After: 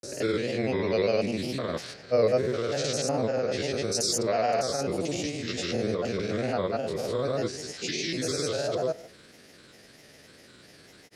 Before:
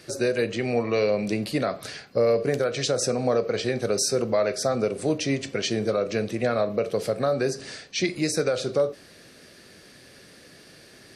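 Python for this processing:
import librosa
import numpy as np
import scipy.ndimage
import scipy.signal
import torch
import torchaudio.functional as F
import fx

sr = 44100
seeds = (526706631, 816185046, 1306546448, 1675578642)

y = fx.spec_steps(x, sr, hold_ms=200)
y = fx.dynamic_eq(y, sr, hz=5700.0, q=0.76, threshold_db=-50.0, ratio=4.0, max_db=5)
y = fx.granulator(y, sr, seeds[0], grain_ms=100.0, per_s=20.0, spray_ms=100.0, spread_st=3)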